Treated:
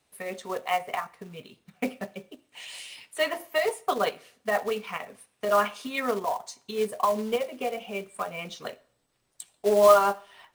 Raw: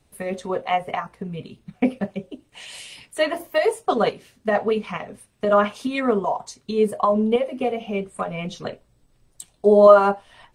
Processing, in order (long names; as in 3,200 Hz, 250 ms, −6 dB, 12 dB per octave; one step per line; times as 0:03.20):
low-pass filter 1,400 Hz 6 dB per octave
spectral tilt +4.5 dB per octave
floating-point word with a short mantissa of 2 bits
on a send: convolution reverb RT60 0.60 s, pre-delay 47 ms, DRR 23 dB
on the sum: level −2 dB